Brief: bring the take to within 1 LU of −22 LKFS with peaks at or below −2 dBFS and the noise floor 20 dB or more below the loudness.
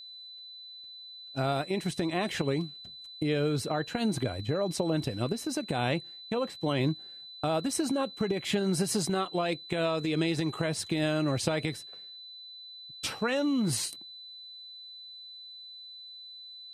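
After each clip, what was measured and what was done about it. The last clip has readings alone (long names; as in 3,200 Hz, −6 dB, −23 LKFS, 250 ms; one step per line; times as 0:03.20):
interfering tone 4,000 Hz; level of the tone −44 dBFS; integrated loudness −30.5 LKFS; sample peak −14.0 dBFS; target loudness −22.0 LKFS
→ notch filter 4,000 Hz, Q 30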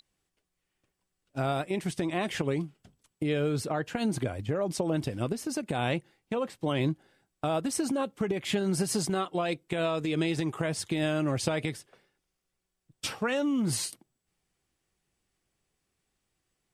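interfering tone none found; integrated loudness −30.5 LKFS; sample peak −13.5 dBFS; target loudness −22.0 LKFS
→ level +8.5 dB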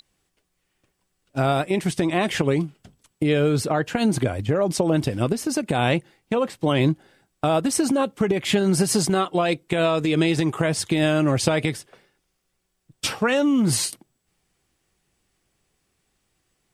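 integrated loudness −22.0 LKFS; sample peak −5.0 dBFS; background noise floor −74 dBFS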